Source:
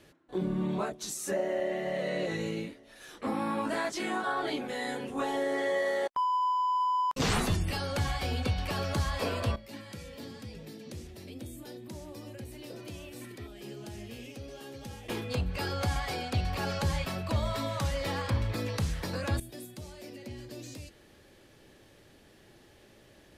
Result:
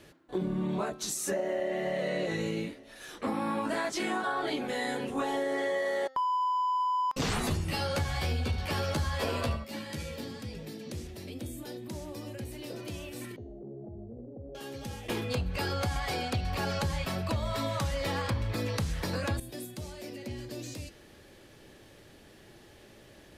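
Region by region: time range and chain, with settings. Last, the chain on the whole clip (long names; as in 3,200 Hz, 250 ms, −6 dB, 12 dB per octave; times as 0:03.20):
0:07.42–0:10.21: double-tracking delay 13 ms −2 dB + single-tap delay 73 ms −9.5 dB
0:13.36–0:14.55: Butterworth low-pass 730 Hz 48 dB per octave + downward compressor 3 to 1, threshold −44 dBFS
whole clip: hum removal 263 Hz, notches 26; downward compressor, threshold −31 dBFS; level +3.5 dB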